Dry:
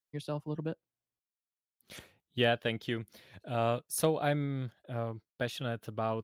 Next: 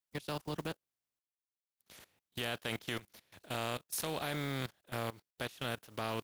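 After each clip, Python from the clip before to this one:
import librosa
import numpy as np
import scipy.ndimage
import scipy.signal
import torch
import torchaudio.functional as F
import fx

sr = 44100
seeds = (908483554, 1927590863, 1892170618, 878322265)

y = fx.spec_flatten(x, sr, power=0.51)
y = fx.level_steps(y, sr, step_db=19)
y = F.gain(torch.from_numpy(y), 1.0).numpy()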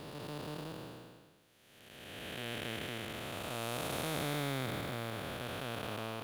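y = fx.spec_blur(x, sr, span_ms=775.0)
y = F.gain(torch.from_numpy(y), 5.5).numpy()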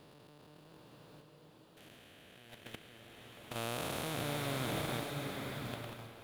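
y = fx.level_steps(x, sr, step_db=20)
y = fx.rev_bloom(y, sr, seeds[0], attack_ms=850, drr_db=2.0)
y = F.gain(torch.from_numpy(y), 1.0).numpy()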